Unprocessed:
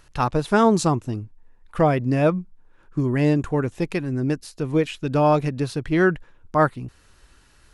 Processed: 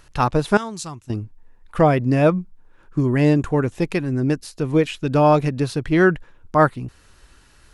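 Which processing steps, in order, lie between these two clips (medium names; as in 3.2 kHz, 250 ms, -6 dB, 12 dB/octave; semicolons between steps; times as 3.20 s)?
0.57–1.10 s: amplifier tone stack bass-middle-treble 5-5-5; trim +3 dB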